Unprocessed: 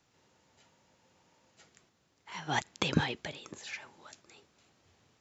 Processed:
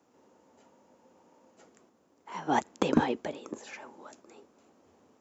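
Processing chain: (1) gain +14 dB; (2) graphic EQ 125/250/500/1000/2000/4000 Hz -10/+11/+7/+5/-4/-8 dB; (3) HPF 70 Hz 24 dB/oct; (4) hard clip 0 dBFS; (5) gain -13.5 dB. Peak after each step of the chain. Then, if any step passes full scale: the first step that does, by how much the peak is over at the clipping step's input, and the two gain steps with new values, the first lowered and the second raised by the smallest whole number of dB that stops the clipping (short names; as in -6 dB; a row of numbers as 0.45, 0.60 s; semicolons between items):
+2.5, +8.0, +8.0, 0.0, -13.5 dBFS; step 1, 8.0 dB; step 1 +6 dB, step 5 -5.5 dB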